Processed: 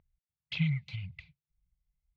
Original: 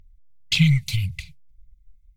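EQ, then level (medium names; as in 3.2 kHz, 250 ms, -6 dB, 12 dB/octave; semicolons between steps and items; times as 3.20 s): high-pass 370 Hz 6 dB/octave; low-pass 1.5 kHz 6 dB/octave; distance through air 240 m; -4.0 dB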